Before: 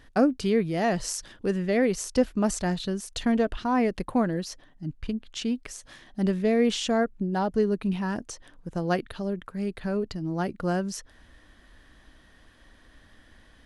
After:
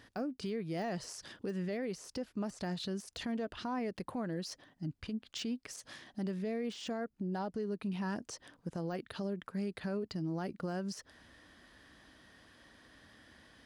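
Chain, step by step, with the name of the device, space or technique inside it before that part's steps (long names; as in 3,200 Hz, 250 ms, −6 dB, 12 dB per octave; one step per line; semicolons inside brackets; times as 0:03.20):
broadcast voice chain (high-pass filter 100 Hz 12 dB per octave; de-essing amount 95%; downward compressor 5 to 1, threshold −31 dBFS, peak gain reduction 13.5 dB; parametric band 4,900 Hz +5 dB 0.27 octaves; brickwall limiter −28 dBFS, peak gain reduction 7.5 dB)
level −2 dB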